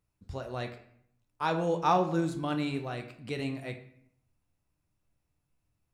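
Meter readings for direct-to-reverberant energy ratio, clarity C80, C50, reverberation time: 5.0 dB, 13.5 dB, 10.5 dB, 0.65 s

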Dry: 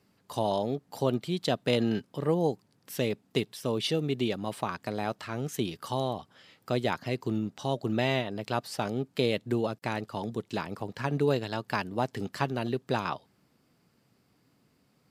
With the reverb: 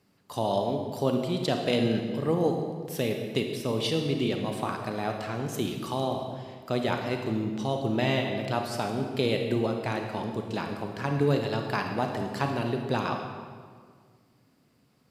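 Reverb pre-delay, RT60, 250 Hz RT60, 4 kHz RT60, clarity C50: 30 ms, 1.8 s, 2.1 s, 1.3 s, 4.0 dB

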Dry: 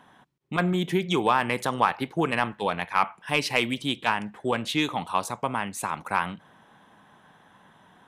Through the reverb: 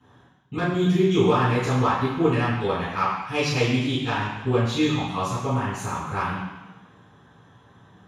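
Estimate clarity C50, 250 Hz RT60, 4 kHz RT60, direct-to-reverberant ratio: 0.5 dB, 1.1 s, 1.2 s, -18.0 dB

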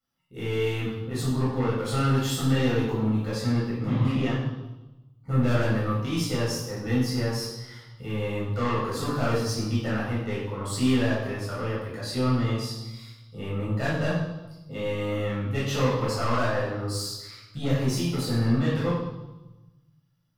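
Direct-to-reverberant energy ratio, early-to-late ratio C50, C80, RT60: -8.5 dB, 1.0 dB, 4.0 dB, 1.0 s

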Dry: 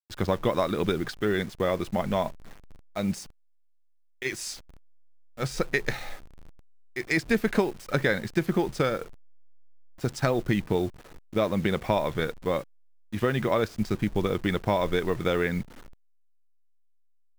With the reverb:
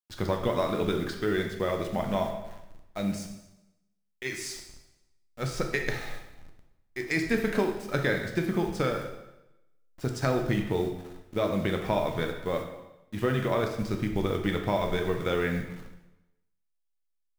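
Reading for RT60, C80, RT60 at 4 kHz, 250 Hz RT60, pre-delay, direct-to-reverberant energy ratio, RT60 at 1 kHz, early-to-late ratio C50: 0.90 s, 9.0 dB, 0.85 s, 0.95 s, 5 ms, 3.5 dB, 0.95 s, 6.5 dB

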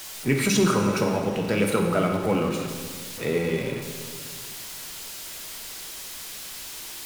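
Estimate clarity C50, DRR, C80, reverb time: 5.0 dB, 2.5 dB, 6.5 dB, 1.8 s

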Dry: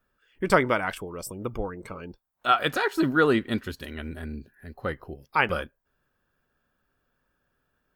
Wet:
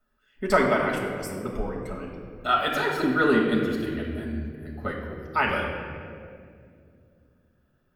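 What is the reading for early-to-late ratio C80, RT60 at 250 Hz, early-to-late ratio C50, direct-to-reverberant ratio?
4.5 dB, 3.7 s, 2.5 dB, -2.5 dB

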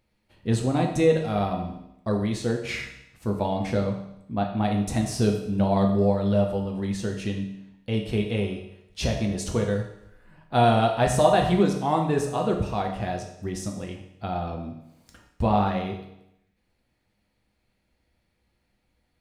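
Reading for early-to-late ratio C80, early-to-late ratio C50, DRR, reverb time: 9.0 dB, 6.5 dB, 1.5 dB, 0.80 s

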